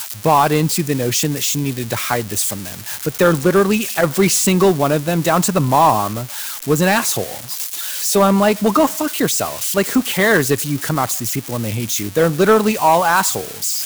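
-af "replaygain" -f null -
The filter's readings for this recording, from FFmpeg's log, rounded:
track_gain = -3.3 dB
track_peak = 0.491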